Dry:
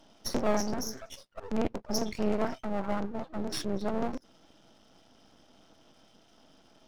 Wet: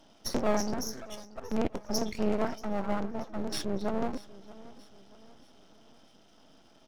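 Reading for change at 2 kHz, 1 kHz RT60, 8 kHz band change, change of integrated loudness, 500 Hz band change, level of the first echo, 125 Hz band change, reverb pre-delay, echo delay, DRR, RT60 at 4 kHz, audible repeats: 0.0 dB, no reverb audible, 0.0 dB, 0.0 dB, 0.0 dB, −19.0 dB, 0.0 dB, no reverb audible, 632 ms, no reverb audible, no reverb audible, 3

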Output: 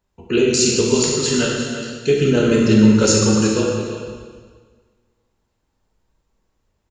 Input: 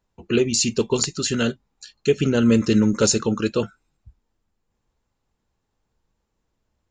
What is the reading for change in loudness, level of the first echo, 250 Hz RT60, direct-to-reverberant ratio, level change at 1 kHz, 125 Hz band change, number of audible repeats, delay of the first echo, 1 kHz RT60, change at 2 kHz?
+4.5 dB, −11.0 dB, 1.7 s, −3.5 dB, +4.5 dB, +5.5 dB, 1, 344 ms, 1.7 s, +5.0 dB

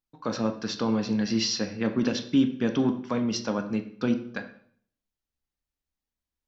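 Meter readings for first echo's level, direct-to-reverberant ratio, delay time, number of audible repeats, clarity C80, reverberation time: no echo audible, 5.5 dB, no echo audible, no echo audible, 14.0 dB, 0.55 s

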